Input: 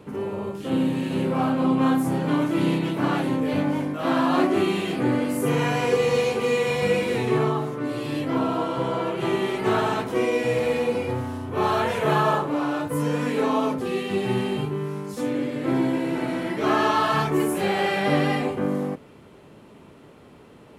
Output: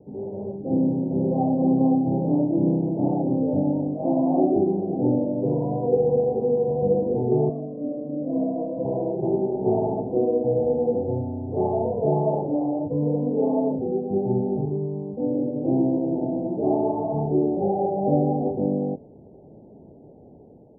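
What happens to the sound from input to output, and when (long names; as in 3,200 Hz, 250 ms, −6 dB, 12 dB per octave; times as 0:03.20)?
0:05.21–0:05.86: EQ curve with evenly spaced ripples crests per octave 1.3, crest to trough 9 dB
0:07.49–0:08.85: phaser with its sweep stopped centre 570 Hz, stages 8
whole clip: Butterworth low-pass 810 Hz 72 dB per octave; automatic gain control gain up to 5 dB; level −3.5 dB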